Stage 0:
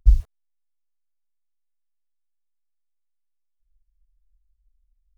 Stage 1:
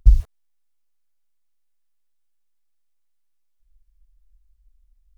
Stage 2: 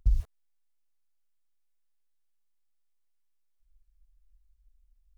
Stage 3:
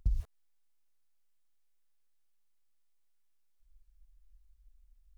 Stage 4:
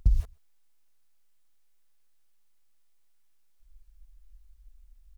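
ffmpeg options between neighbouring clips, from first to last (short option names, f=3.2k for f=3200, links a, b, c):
-af "acompressor=threshold=-16dB:ratio=2.5,volume=7.5dB"
-af "alimiter=limit=-10dB:level=0:latency=1:release=88,volume=-5.5dB"
-af "acompressor=threshold=-28dB:ratio=6,volume=2dB"
-filter_complex "[0:a]asplit=2[a][b];[b]adelay=128.3,volume=-28dB,highshelf=f=4k:g=-2.89[c];[a][c]amix=inputs=2:normalize=0,volume=8dB"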